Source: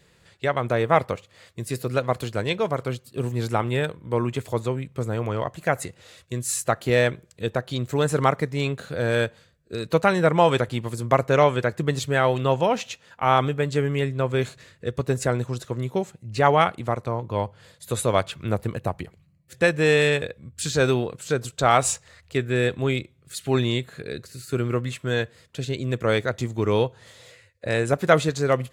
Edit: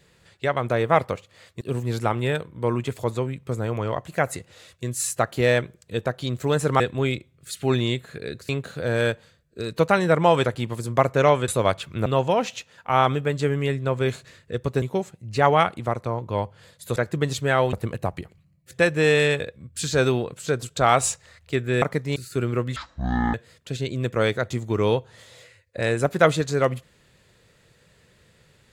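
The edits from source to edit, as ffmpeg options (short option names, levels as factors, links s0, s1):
-filter_complex "[0:a]asplit=13[s0][s1][s2][s3][s4][s5][s6][s7][s8][s9][s10][s11][s12];[s0]atrim=end=1.612[s13];[s1]atrim=start=3.098:end=8.292[s14];[s2]atrim=start=22.638:end=24.332[s15];[s3]atrim=start=8.628:end=11.622[s16];[s4]atrim=start=17.968:end=18.552[s17];[s5]atrim=start=12.388:end=15.152[s18];[s6]atrim=start=15.828:end=17.972[s19];[s7]atrim=start=11.618:end=12.392[s20];[s8]atrim=start=18.548:end=22.642[s21];[s9]atrim=start=8.288:end=8.632[s22];[s10]atrim=start=24.328:end=24.934[s23];[s11]atrim=start=24.93:end=25.22,asetpts=PTS-STARTPTS,asetrate=22050,aresample=44100[s24];[s12]atrim=start=25.216[s25];[s13][s14]acrossfade=d=0.004:c1=hsin:c2=hsin[s26];[s26][s15]acrossfade=d=0.004:c1=hsin:c2=hsin[s27];[s27][s16]acrossfade=d=0.004:c1=hsin:c2=hsin[s28];[s28][s17]acrossfade=d=0.004:c1=hsin:c2=hsin[s29];[s29][s18]acrossfade=d=0.004:c1=hsin:c2=hsin[s30];[s30][s19]acrossfade=d=0.004:c1=hsin:c2=hsin[s31];[s31][s20]acrossfade=d=0.004:c1=hsin:c2=hsin[s32];[s32][s21]acrossfade=d=0.004:c1=hsin:c2=hsin[s33];[s33][s22]acrossfade=d=0.004:c1=hsin:c2=hsin[s34];[s34][s23]acrossfade=d=0.004:c1=hsin:c2=hsin[s35];[s35][s24]acrossfade=d=0.004:c1=hsin:c2=hsin[s36];[s36][s25]acrossfade=d=0.004:c1=hsin:c2=hsin"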